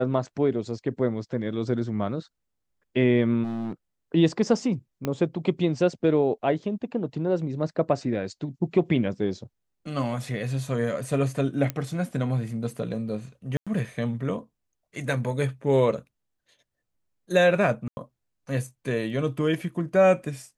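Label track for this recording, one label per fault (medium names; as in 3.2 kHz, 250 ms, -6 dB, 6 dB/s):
3.430000	3.730000	clipped -27.5 dBFS
5.050000	5.050000	pop -14 dBFS
11.700000	11.700000	pop -13 dBFS
13.570000	13.670000	dropout 96 ms
17.880000	17.970000	dropout 90 ms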